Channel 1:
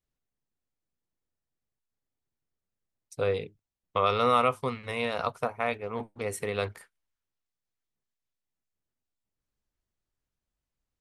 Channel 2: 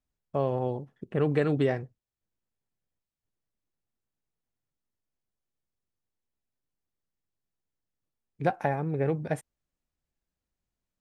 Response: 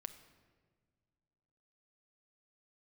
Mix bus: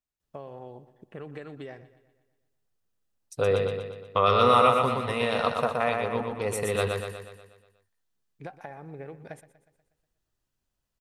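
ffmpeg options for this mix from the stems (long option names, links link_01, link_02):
-filter_complex "[0:a]bandreject=frequency=2200:width=8.7,adelay=200,volume=3dB,asplit=2[link_01][link_02];[link_02]volume=-4dB[link_03];[1:a]lowshelf=frequency=450:gain=-8,acompressor=threshold=-33dB:ratio=6,volume=-4dB,asplit=2[link_04][link_05];[link_05]volume=-16dB[link_06];[link_03][link_06]amix=inputs=2:normalize=0,aecho=0:1:121|242|363|484|605|726|847|968:1|0.53|0.281|0.149|0.0789|0.0418|0.0222|0.0117[link_07];[link_01][link_04][link_07]amix=inputs=3:normalize=0"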